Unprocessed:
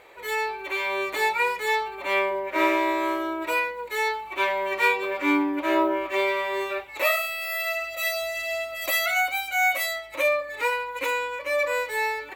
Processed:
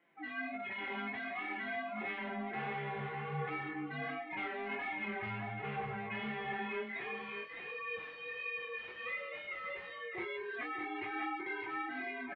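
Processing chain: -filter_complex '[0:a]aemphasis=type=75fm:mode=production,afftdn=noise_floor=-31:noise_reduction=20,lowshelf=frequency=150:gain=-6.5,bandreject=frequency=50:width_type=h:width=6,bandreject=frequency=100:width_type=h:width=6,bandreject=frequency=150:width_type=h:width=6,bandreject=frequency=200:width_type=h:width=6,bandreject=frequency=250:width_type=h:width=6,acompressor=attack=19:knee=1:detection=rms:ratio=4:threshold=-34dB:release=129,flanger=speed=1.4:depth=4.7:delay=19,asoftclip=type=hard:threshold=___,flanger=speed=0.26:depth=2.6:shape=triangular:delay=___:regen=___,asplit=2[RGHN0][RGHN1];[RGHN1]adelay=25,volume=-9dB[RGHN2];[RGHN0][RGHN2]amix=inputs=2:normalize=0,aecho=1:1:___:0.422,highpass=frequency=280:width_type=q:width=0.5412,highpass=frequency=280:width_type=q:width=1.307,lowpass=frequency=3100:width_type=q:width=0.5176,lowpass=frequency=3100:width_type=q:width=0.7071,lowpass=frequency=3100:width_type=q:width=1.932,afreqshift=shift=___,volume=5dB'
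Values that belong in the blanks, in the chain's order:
-38.5dB, 5.7, 33, 603, -180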